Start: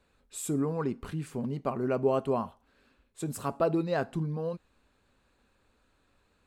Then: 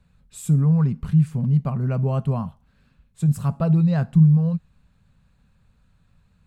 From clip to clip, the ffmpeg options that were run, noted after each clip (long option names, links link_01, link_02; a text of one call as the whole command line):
ffmpeg -i in.wav -af "lowshelf=frequency=230:width_type=q:width=3:gain=12" out.wav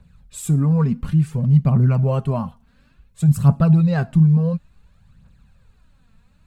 ffmpeg -i in.wav -af "aphaser=in_gain=1:out_gain=1:delay=4.6:decay=0.52:speed=0.57:type=triangular,volume=3.5dB" out.wav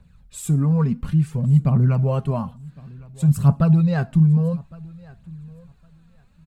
ffmpeg -i in.wav -af "aecho=1:1:1110|2220:0.0708|0.0127,volume=-1.5dB" out.wav